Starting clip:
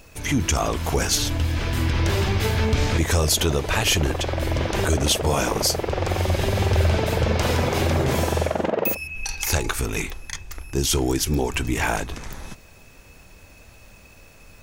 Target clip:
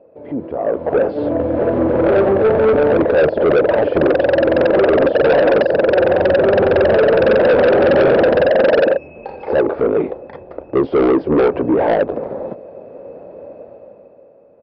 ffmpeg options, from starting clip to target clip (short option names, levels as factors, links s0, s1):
-af "highpass=260,alimiter=limit=0.158:level=0:latency=1:release=10,dynaudnorm=f=120:g=17:m=6.31,lowpass=f=550:t=q:w=4.9,aresample=11025,asoftclip=type=tanh:threshold=0.376,aresample=44100"